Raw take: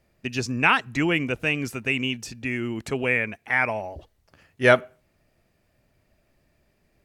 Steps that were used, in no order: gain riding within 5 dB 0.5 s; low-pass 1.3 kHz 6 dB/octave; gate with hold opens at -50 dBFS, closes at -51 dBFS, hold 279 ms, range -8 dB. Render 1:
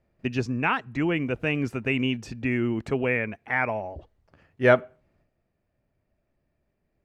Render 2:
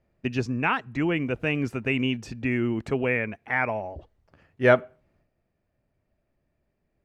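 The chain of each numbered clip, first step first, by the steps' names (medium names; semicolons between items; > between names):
low-pass > gain riding > gate with hold; low-pass > gate with hold > gain riding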